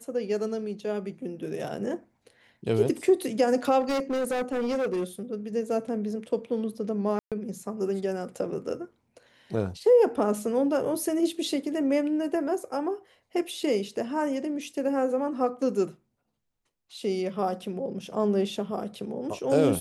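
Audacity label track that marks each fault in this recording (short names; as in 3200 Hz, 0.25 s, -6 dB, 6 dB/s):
3.800000	5.040000	clipped -24 dBFS
7.190000	7.320000	gap 0.127 s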